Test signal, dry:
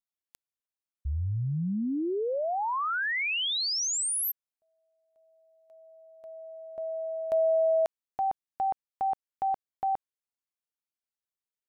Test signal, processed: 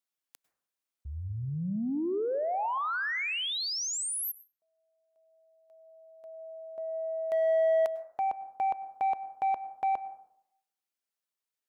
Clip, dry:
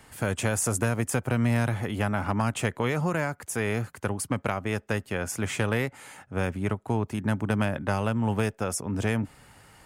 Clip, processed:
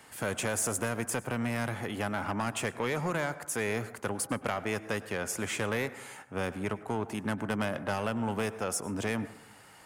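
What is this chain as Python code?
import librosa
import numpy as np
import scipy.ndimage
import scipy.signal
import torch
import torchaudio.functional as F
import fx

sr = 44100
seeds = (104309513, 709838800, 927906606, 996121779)

p1 = fx.highpass(x, sr, hz=100.0, slope=6)
p2 = fx.low_shelf(p1, sr, hz=160.0, db=-9.0)
p3 = np.clip(10.0 ** (26.5 / 20.0) * p2, -1.0, 1.0) / 10.0 ** (26.5 / 20.0)
p4 = p2 + (p3 * librosa.db_to_amplitude(-11.0))
p5 = fx.rider(p4, sr, range_db=4, speed_s=2.0)
p6 = 10.0 ** (-19.5 / 20.0) * np.tanh(p5 / 10.0 ** (-19.5 / 20.0))
p7 = fx.rev_plate(p6, sr, seeds[0], rt60_s=0.73, hf_ratio=0.3, predelay_ms=90, drr_db=14.5)
y = p7 * librosa.db_to_amplitude(-2.5)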